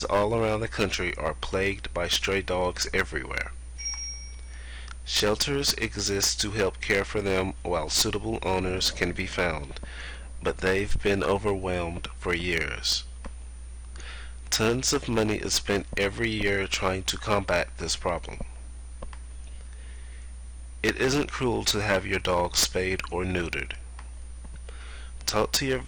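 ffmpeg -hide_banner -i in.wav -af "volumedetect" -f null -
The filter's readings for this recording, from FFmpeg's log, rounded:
mean_volume: -28.3 dB
max_volume: -5.6 dB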